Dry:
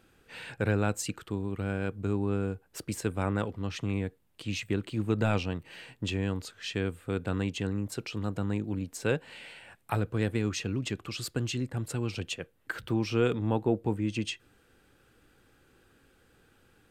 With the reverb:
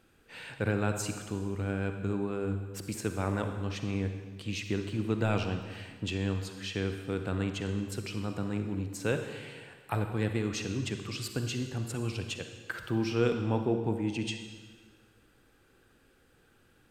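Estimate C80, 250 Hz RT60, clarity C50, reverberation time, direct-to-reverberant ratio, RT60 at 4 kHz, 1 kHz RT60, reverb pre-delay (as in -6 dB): 8.5 dB, 1.6 s, 7.0 dB, 1.6 s, 6.0 dB, 1.4 s, 1.5 s, 39 ms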